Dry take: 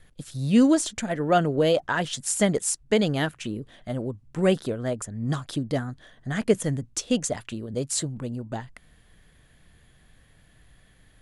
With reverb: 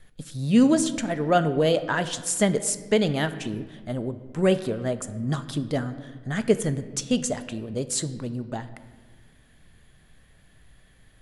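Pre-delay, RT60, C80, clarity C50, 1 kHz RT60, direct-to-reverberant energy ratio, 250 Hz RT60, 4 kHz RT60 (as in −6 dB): 3 ms, 1.5 s, 14.5 dB, 13.5 dB, 1.4 s, 11.0 dB, 2.2 s, 1.0 s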